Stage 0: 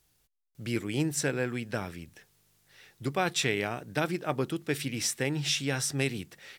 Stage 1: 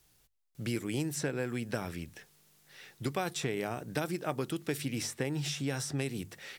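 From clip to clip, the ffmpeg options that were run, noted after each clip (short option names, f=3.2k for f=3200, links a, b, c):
-filter_complex "[0:a]bandreject=f=50:t=h:w=6,bandreject=f=100:t=h:w=6,acrossover=split=1300|5400[a][b][c];[a]acompressor=threshold=-34dB:ratio=4[d];[b]acompressor=threshold=-47dB:ratio=4[e];[c]acompressor=threshold=-45dB:ratio=4[f];[d][e][f]amix=inputs=3:normalize=0,volume=3dB"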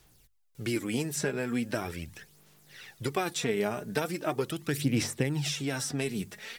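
-af "aphaser=in_gain=1:out_gain=1:delay=4.9:decay=0.52:speed=0.4:type=sinusoidal,volume=2.5dB"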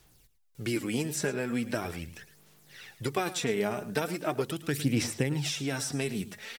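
-af "aecho=1:1:109:0.178"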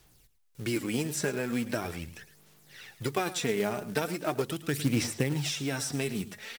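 -af "acrusher=bits=4:mode=log:mix=0:aa=0.000001"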